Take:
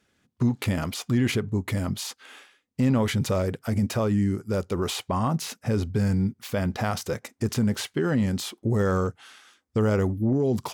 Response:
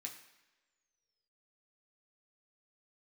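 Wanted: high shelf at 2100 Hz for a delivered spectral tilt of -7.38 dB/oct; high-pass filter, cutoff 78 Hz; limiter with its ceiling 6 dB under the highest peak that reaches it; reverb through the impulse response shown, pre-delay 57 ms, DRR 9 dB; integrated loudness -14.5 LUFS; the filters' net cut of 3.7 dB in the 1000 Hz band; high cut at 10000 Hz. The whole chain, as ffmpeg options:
-filter_complex "[0:a]highpass=78,lowpass=10k,equalizer=f=1k:t=o:g=-3,highshelf=f=2.1k:g=-7.5,alimiter=limit=-19dB:level=0:latency=1,asplit=2[a][b];[1:a]atrim=start_sample=2205,adelay=57[c];[b][c]afir=irnorm=-1:irlink=0,volume=-5.5dB[d];[a][d]amix=inputs=2:normalize=0,volume=14.5dB"

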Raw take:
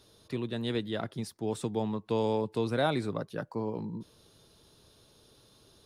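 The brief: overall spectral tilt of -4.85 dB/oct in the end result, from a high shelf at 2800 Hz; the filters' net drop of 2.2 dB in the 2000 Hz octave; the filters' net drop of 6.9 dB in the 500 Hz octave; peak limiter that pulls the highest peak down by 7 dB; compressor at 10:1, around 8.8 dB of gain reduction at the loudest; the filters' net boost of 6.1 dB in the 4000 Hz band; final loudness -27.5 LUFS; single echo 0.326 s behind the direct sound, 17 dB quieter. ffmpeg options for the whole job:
-af "equalizer=f=500:t=o:g=-8.5,equalizer=f=2k:t=o:g=-6,highshelf=f=2.8k:g=6.5,equalizer=f=4k:t=o:g=4,acompressor=threshold=-36dB:ratio=10,alimiter=level_in=8dB:limit=-24dB:level=0:latency=1,volume=-8dB,aecho=1:1:326:0.141,volume=15dB"

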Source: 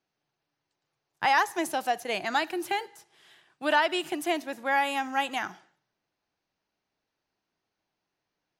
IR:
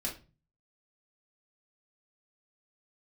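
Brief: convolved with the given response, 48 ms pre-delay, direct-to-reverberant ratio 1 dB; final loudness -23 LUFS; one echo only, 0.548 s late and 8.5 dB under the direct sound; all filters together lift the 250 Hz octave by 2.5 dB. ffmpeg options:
-filter_complex "[0:a]equalizer=f=250:t=o:g=3.5,aecho=1:1:548:0.376,asplit=2[a][b];[1:a]atrim=start_sample=2205,adelay=48[c];[b][c]afir=irnorm=-1:irlink=0,volume=-3.5dB[d];[a][d]amix=inputs=2:normalize=0,volume=1.5dB"

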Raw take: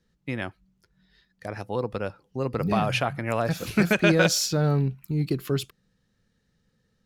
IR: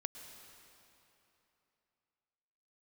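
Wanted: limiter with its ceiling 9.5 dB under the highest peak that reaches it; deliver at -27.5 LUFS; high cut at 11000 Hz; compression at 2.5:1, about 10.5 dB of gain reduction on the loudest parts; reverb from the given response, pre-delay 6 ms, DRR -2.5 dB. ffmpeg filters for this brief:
-filter_complex "[0:a]lowpass=11k,acompressor=threshold=-31dB:ratio=2.5,alimiter=level_in=2.5dB:limit=-24dB:level=0:latency=1,volume=-2.5dB,asplit=2[a][b];[1:a]atrim=start_sample=2205,adelay=6[c];[b][c]afir=irnorm=-1:irlink=0,volume=4.5dB[d];[a][d]amix=inputs=2:normalize=0,volume=4.5dB"

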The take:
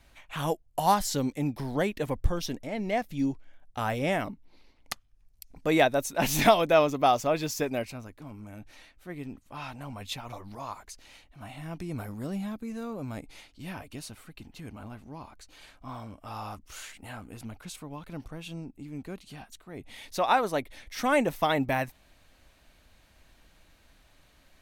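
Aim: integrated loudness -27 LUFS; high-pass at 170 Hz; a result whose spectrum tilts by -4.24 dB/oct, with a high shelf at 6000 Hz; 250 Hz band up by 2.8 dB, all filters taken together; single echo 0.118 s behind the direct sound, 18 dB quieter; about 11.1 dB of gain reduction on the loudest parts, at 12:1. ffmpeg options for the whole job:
-af "highpass=170,equalizer=f=250:t=o:g=4.5,highshelf=f=6k:g=7,acompressor=threshold=-25dB:ratio=12,aecho=1:1:118:0.126,volume=7dB"

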